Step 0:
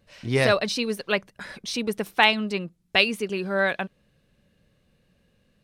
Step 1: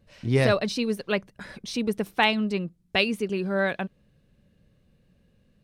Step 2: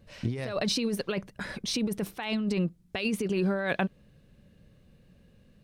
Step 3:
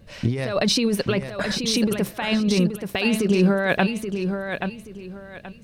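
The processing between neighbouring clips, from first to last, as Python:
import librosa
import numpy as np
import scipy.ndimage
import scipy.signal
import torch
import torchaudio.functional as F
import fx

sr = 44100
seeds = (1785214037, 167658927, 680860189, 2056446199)

y1 = fx.low_shelf(x, sr, hz=440.0, db=8.5)
y1 = F.gain(torch.from_numpy(y1), -4.5).numpy()
y2 = fx.over_compress(y1, sr, threshold_db=-29.0, ratio=-1.0)
y3 = fx.echo_feedback(y2, sr, ms=828, feedback_pct=27, wet_db=-7.0)
y3 = F.gain(torch.from_numpy(y3), 8.0).numpy()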